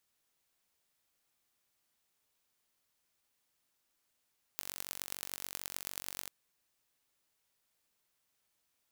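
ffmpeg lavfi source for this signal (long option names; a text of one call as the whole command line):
ffmpeg -f lavfi -i "aevalsrc='0.316*eq(mod(n,942),0)*(0.5+0.5*eq(mod(n,4710),0))':duration=1.69:sample_rate=44100" out.wav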